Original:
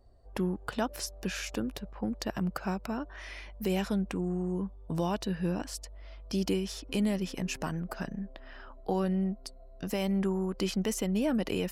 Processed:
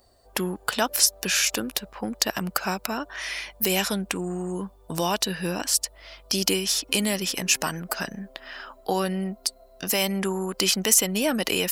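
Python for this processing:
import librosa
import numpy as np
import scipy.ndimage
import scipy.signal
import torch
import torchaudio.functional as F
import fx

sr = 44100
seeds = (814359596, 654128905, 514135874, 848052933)

y = fx.tilt_eq(x, sr, slope=3.5)
y = y * librosa.db_to_amplitude(9.0)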